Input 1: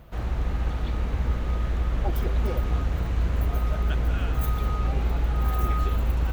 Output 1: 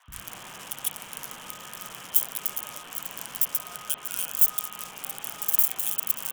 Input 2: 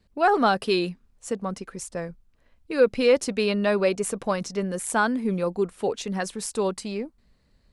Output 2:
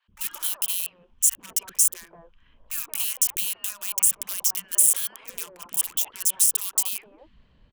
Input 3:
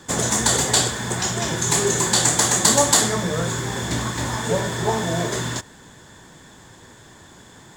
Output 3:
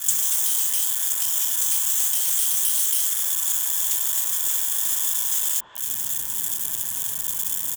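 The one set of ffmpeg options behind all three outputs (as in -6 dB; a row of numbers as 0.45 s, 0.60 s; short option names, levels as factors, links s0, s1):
-filter_complex "[0:a]afftfilt=real='re*lt(hypot(re,im),0.178)':imag='im*lt(hypot(re,im),0.178)':win_size=1024:overlap=0.75,equalizer=f=1000:t=o:w=0.33:g=6,equalizer=f=2000:t=o:w=0.33:g=-6,equalizer=f=3150:t=o:w=0.33:g=12,acrossover=split=660|4100[s0][s1][s2];[s0]acompressor=threshold=0.00398:ratio=4[s3];[s1]acompressor=threshold=0.0398:ratio=4[s4];[s2]acompressor=threshold=0.0141:ratio=4[s5];[s3][s4][s5]amix=inputs=3:normalize=0,asplit=2[s6][s7];[s7]alimiter=limit=0.0631:level=0:latency=1:release=31,volume=1.41[s8];[s6][s8]amix=inputs=2:normalize=0,acompressor=threshold=0.0126:ratio=8,acrossover=split=3000[s9][s10];[s9]aeval=exprs='0.0141*(abs(mod(val(0)/0.0141+3,4)-2)-1)':c=same[s11];[s10]acrusher=bits=6:mix=0:aa=0.000001[s12];[s11][s12]amix=inputs=2:normalize=0,aexciter=amount=8.5:drive=3.8:freq=6100,acrossover=split=340|1100[s13][s14][s15];[s13]adelay=80[s16];[s14]adelay=180[s17];[s16][s17][s15]amix=inputs=3:normalize=0,adynamicequalizer=threshold=0.00178:dfrequency=1500:dqfactor=0.7:tfrequency=1500:tqfactor=0.7:attack=5:release=100:ratio=0.375:range=4:mode=boostabove:tftype=highshelf,volume=0.794"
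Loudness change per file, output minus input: +1.5 LU, +3.0 LU, -0.5 LU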